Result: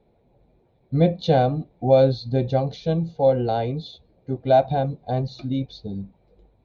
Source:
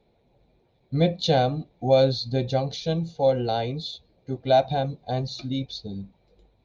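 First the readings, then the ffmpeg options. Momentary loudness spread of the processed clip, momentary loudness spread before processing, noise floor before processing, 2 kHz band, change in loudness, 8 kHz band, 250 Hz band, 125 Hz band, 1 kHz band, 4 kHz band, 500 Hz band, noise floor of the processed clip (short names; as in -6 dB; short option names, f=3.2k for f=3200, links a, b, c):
15 LU, 14 LU, -66 dBFS, -1.0 dB, +2.5 dB, n/a, +3.5 dB, +3.5 dB, +2.0 dB, -6.0 dB, +3.0 dB, -63 dBFS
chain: -af "lowpass=f=1.3k:p=1,volume=3.5dB"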